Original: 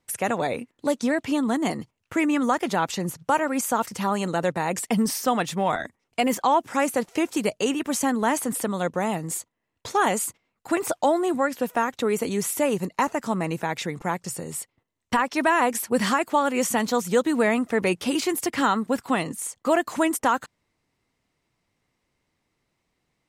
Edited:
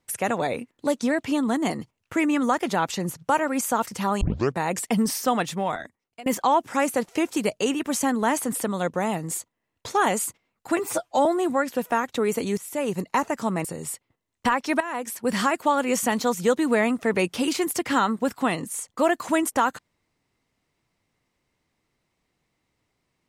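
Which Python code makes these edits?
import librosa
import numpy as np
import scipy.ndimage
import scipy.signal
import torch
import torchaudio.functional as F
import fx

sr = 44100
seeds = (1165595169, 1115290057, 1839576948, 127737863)

y = fx.edit(x, sr, fx.tape_start(start_s=4.21, length_s=0.34),
    fx.fade_out_to(start_s=5.4, length_s=0.86, floor_db=-23.0),
    fx.stretch_span(start_s=10.79, length_s=0.31, factor=1.5),
    fx.fade_in_from(start_s=12.42, length_s=0.41, floor_db=-17.5),
    fx.cut(start_s=13.49, length_s=0.83),
    fx.fade_in_from(start_s=15.48, length_s=0.68, floor_db=-15.0), tone=tone)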